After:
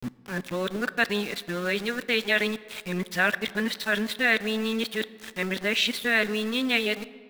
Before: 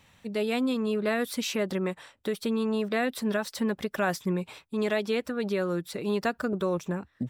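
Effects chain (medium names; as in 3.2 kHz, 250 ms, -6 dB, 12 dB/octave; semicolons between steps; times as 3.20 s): reverse the whole clip; high-order bell 2.5 kHz +12.5 dB; small samples zeroed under -34 dBFS; on a send: reverberation RT60 2.2 s, pre-delay 4 ms, DRR 15.5 dB; on the sum: trim -1.5 dB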